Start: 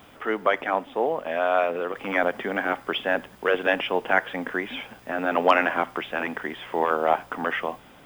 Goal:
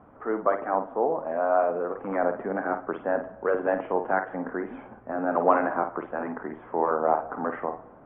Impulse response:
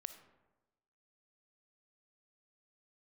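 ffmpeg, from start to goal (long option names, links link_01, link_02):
-filter_complex "[0:a]lowpass=frequency=1300:width=0.5412,lowpass=frequency=1300:width=1.3066,asplit=2[link_01][link_02];[link_02]lowshelf=frequency=280:gain=8.5[link_03];[1:a]atrim=start_sample=2205,lowshelf=frequency=210:gain=-11.5,adelay=52[link_04];[link_03][link_04]afir=irnorm=-1:irlink=0,volume=-4dB[link_05];[link_01][link_05]amix=inputs=2:normalize=0,volume=-1dB" -ar 48000 -c:a libvorbis -b:a 64k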